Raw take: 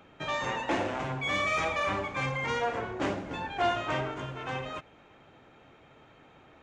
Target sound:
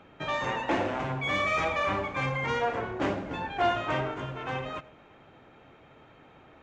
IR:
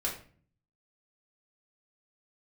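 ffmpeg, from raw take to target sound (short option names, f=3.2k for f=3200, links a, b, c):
-filter_complex "[0:a]lowpass=f=3.8k:p=1,asplit=2[a][b];[1:a]atrim=start_sample=2205,adelay=88[c];[b][c]afir=irnorm=-1:irlink=0,volume=-25.5dB[d];[a][d]amix=inputs=2:normalize=0,volume=2dB"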